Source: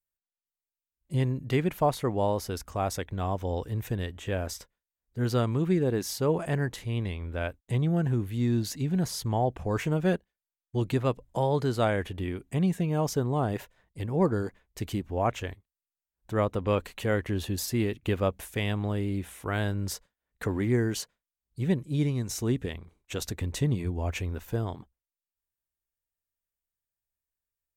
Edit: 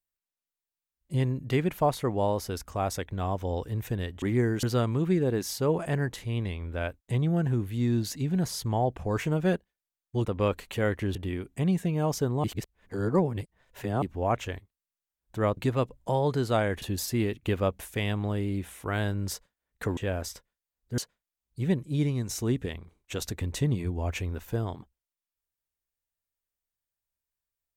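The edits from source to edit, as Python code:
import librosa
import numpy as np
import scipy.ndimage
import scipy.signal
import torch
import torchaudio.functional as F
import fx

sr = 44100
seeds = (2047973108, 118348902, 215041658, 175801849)

y = fx.edit(x, sr, fx.swap(start_s=4.22, length_s=1.01, other_s=20.57, other_length_s=0.41),
    fx.swap(start_s=10.85, length_s=1.25, other_s=16.52, other_length_s=0.9),
    fx.reverse_span(start_s=13.39, length_s=1.58), tone=tone)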